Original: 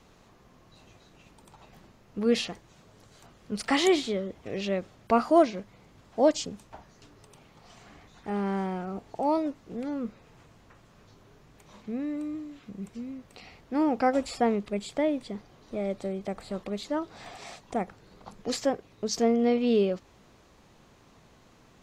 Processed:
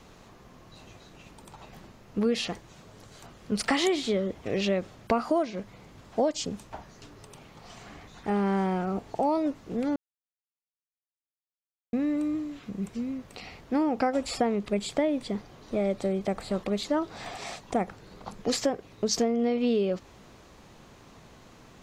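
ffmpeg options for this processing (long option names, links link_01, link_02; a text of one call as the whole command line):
ffmpeg -i in.wav -filter_complex "[0:a]asplit=3[link_01][link_02][link_03];[link_01]atrim=end=9.96,asetpts=PTS-STARTPTS,afade=type=out:start_time=9.956:duration=0.004:curve=hsin[link_04];[link_02]atrim=start=9.96:end=11.93,asetpts=PTS-STARTPTS,volume=0[link_05];[link_03]atrim=start=11.93,asetpts=PTS-STARTPTS,afade=type=in:duration=0.004:curve=hsin[link_06];[link_04][link_05][link_06]concat=n=3:v=0:a=1,acompressor=threshold=-27dB:ratio=10,volume=5.5dB" out.wav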